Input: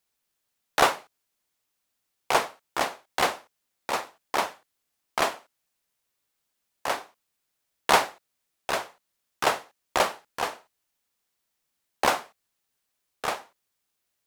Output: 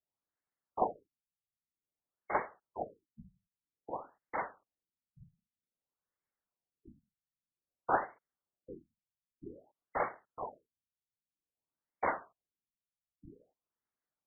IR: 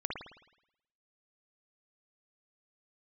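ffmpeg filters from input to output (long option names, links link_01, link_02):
-af "afftfilt=real='hypot(re,im)*cos(2*PI*random(0))':imag='hypot(re,im)*sin(2*PI*random(1))':win_size=512:overlap=0.75,afftfilt=real='re*lt(b*sr/1024,200*pow(2300/200,0.5+0.5*sin(2*PI*0.52*pts/sr)))':imag='im*lt(b*sr/1024,200*pow(2300/200,0.5+0.5*sin(2*PI*0.52*pts/sr)))':win_size=1024:overlap=0.75,volume=-3.5dB"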